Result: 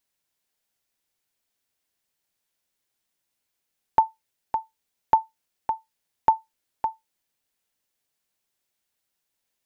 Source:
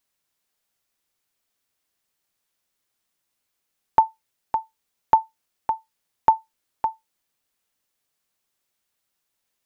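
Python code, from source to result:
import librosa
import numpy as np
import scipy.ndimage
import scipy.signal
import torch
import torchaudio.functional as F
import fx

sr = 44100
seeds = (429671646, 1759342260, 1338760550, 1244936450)

y = fx.peak_eq(x, sr, hz=1200.0, db=-4.5, octaves=0.29)
y = y * 10.0 ** (-2.0 / 20.0)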